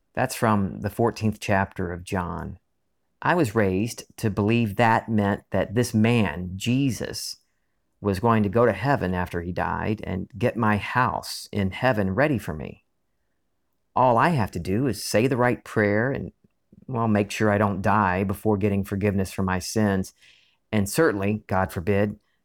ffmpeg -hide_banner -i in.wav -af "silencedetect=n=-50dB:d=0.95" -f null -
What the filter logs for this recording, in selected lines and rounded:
silence_start: 12.78
silence_end: 13.96 | silence_duration: 1.18